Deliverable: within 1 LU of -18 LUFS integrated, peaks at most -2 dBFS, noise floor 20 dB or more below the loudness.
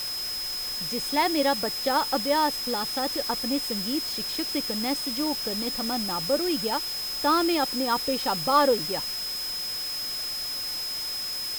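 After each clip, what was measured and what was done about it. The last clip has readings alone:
steady tone 5.1 kHz; tone level -30 dBFS; noise floor -32 dBFS; noise floor target -46 dBFS; loudness -26.0 LUFS; peak level -9.5 dBFS; loudness target -18.0 LUFS
-> band-stop 5.1 kHz, Q 30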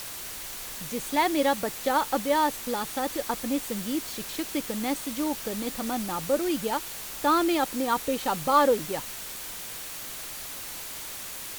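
steady tone not found; noise floor -38 dBFS; noise floor target -48 dBFS
-> noise reduction 10 dB, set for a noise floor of -38 dBFS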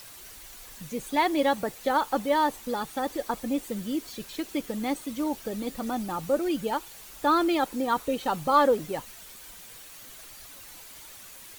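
noise floor -47 dBFS; noise floor target -48 dBFS
-> noise reduction 6 dB, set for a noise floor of -47 dBFS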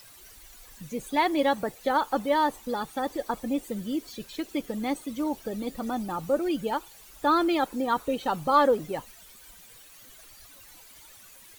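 noise floor -51 dBFS; loudness -28.0 LUFS; peak level -10.5 dBFS; loudness target -18.0 LUFS
-> trim +10 dB; peak limiter -2 dBFS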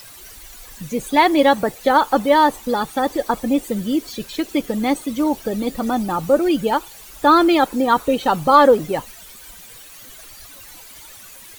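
loudness -18.0 LUFS; peak level -2.0 dBFS; noise floor -41 dBFS

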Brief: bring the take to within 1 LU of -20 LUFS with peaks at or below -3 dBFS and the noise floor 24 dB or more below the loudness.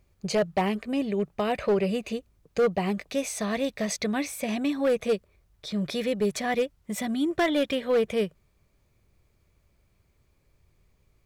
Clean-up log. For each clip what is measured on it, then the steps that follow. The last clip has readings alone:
clipped samples 1.1%; clipping level -18.0 dBFS; loudness -28.0 LUFS; peak level -18.0 dBFS; loudness target -20.0 LUFS
-> clip repair -18 dBFS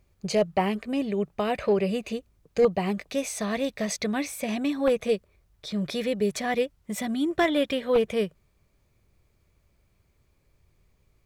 clipped samples 0.0%; loudness -27.0 LUFS; peak level -9.0 dBFS; loudness target -20.0 LUFS
-> trim +7 dB; peak limiter -3 dBFS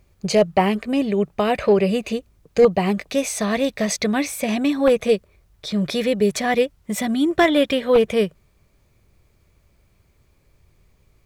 loudness -20.5 LUFS; peak level -3.0 dBFS; noise floor -61 dBFS

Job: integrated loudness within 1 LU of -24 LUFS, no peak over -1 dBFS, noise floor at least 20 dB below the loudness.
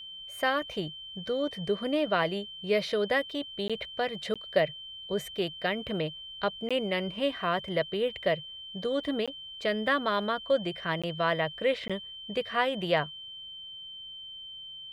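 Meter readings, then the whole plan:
dropouts 6; longest dropout 16 ms; steady tone 3.1 kHz; tone level -41 dBFS; loudness -31.0 LUFS; peak level -12.5 dBFS; loudness target -24.0 LUFS
-> interpolate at 3.68/4.34/6.69/9.26/11.02/11.88 s, 16 ms; band-stop 3.1 kHz, Q 30; trim +7 dB

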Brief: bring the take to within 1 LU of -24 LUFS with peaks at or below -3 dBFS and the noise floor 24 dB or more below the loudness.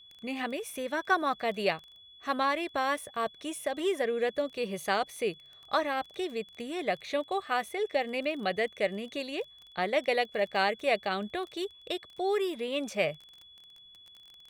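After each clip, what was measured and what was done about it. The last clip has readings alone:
tick rate 20 per s; steady tone 3.4 kHz; tone level -52 dBFS; loudness -31.5 LUFS; peak level -13.5 dBFS; loudness target -24.0 LUFS
-> de-click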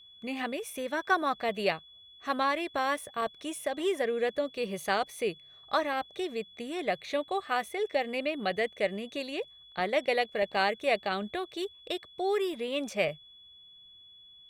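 tick rate 0.28 per s; steady tone 3.4 kHz; tone level -52 dBFS
-> band-stop 3.4 kHz, Q 30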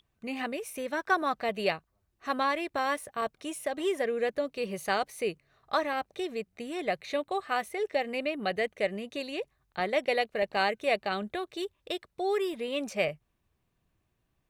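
steady tone not found; loudness -31.5 LUFS; peak level -13.5 dBFS; loudness target -24.0 LUFS
-> trim +7.5 dB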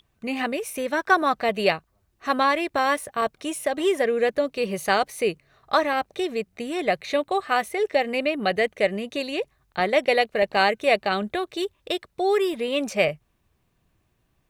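loudness -24.0 LUFS; peak level -6.0 dBFS; noise floor -70 dBFS

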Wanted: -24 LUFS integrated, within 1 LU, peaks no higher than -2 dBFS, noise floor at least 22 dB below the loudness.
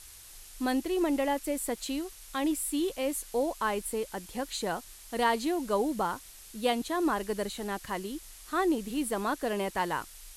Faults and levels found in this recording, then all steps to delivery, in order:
noise floor -50 dBFS; noise floor target -54 dBFS; loudness -31.5 LUFS; peak level -15.0 dBFS; loudness target -24.0 LUFS
-> noise reduction 6 dB, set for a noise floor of -50 dBFS; trim +7.5 dB

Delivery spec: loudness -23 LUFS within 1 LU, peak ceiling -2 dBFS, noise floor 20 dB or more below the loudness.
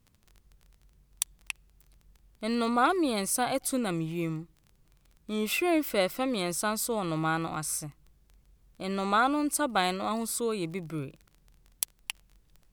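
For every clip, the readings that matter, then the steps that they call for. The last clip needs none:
tick rate 18 per s; loudness -30.0 LUFS; peak level -6.5 dBFS; loudness target -23.0 LUFS
-> de-click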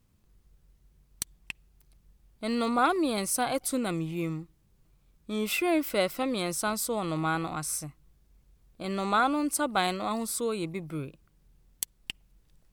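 tick rate 0.71 per s; loudness -29.5 LUFS; peak level -7.0 dBFS; loudness target -23.0 LUFS
-> trim +6.5 dB; peak limiter -2 dBFS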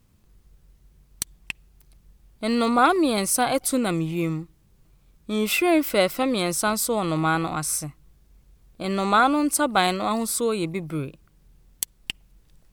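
loudness -23.5 LUFS; peak level -2.0 dBFS; noise floor -60 dBFS

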